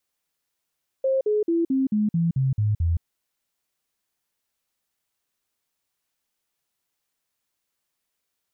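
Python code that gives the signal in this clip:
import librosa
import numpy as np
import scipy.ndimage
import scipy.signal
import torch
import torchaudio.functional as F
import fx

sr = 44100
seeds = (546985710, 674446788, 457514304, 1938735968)

y = fx.stepped_sweep(sr, from_hz=532.0, direction='down', per_octave=3, tones=9, dwell_s=0.17, gap_s=0.05, level_db=-18.5)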